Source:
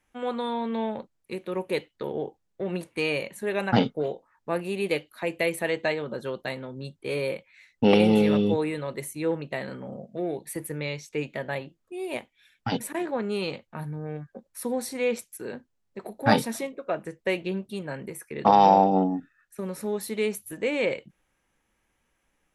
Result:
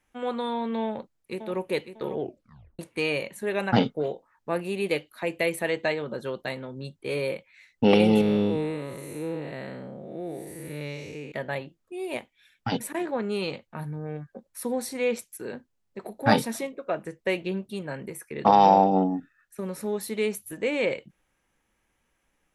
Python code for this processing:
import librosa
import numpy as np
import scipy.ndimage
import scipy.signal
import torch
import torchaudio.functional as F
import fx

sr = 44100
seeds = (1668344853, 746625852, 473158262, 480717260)

y = fx.echo_throw(x, sr, start_s=0.85, length_s=0.75, ms=550, feedback_pct=30, wet_db=-9.5)
y = fx.spec_blur(y, sr, span_ms=249.0, at=(8.21, 11.32))
y = fx.edit(y, sr, fx.tape_stop(start_s=2.19, length_s=0.6), tone=tone)